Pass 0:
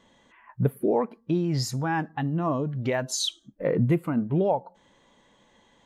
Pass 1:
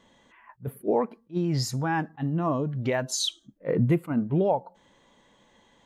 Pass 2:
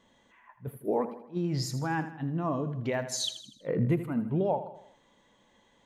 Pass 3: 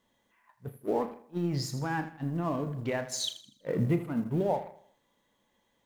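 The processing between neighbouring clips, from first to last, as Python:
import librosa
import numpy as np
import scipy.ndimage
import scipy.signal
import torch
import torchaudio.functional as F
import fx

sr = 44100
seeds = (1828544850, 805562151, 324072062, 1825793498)

y1 = fx.attack_slew(x, sr, db_per_s=390.0)
y2 = fx.echo_feedback(y1, sr, ms=80, feedback_pct=50, wet_db=-12)
y2 = y2 * librosa.db_to_amplitude(-4.5)
y3 = fx.law_mismatch(y2, sr, coded='A')
y3 = fx.doubler(y3, sr, ms=35.0, db=-12)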